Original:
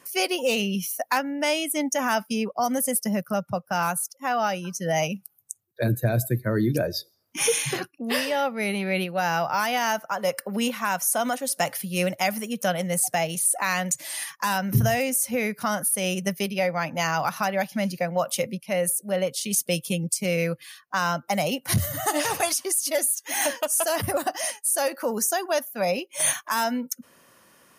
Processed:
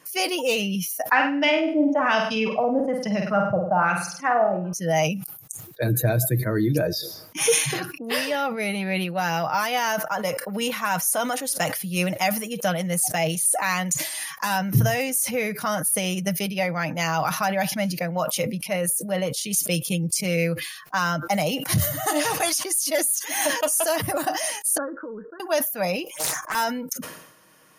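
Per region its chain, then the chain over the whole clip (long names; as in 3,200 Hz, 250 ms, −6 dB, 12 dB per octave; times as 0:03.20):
0:01.11–0:04.73: auto-filter low-pass sine 1.1 Hz 460–4,500 Hz + floating-point word with a short mantissa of 8 bits + flutter between parallel walls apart 8.5 metres, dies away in 0.45 s
0:24.77–0:25.40: downward compressor 4 to 1, threshold −29 dBFS + Butterworth low-pass 1,600 Hz 96 dB per octave + phaser with its sweep stopped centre 310 Hz, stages 4
0:26.04–0:26.55: parametric band 4,100 Hz −13.5 dB 0.24 octaves + phaser swept by the level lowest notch 280 Hz, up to 3,000 Hz, full sweep at −29 dBFS + highs frequency-modulated by the lows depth 0.8 ms
whole clip: notch filter 7,900 Hz, Q 15; comb filter 6.4 ms, depth 45%; level that may fall only so fast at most 67 dB per second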